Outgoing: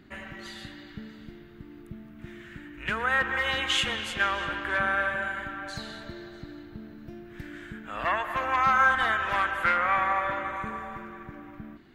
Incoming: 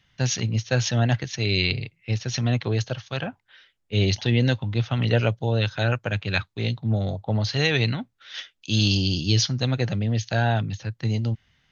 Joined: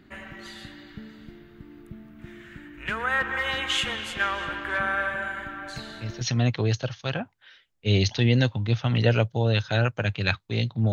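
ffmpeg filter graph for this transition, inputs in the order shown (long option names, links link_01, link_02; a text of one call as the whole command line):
ffmpeg -i cue0.wav -i cue1.wav -filter_complex "[1:a]asplit=2[link_01][link_02];[0:a]apad=whole_dur=10.92,atrim=end=10.92,atrim=end=6.212[link_03];[link_02]atrim=start=2.278:end=6.99[link_04];[link_01]atrim=start=1.83:end=2.28,asetpts=PTS-STARTPTS,volume=-9.5dB,afade=type=in:duration=0.004:curve=hsin,afade=type=out:start_time=0.446:duration=0.004:curve=hsin,adelay=5760[link_05];[link_03][link_04]acrossfade=duration=0.004:curve1=hsin:curve2=hsin[link_06];[link_06][link_05]amix=inputs=2:normalize=0" out.wav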